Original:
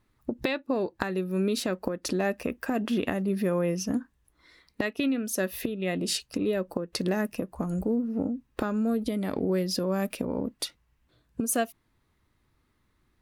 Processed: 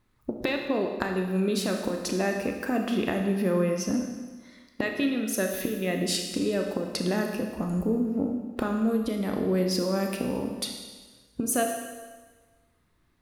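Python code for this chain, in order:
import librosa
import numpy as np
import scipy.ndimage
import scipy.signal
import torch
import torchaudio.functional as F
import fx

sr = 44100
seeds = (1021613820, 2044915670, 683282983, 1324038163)

y = fx.rev_schroeder(x, sr, rt60_s=1.4, comb_ms=25, drr_db=3.0)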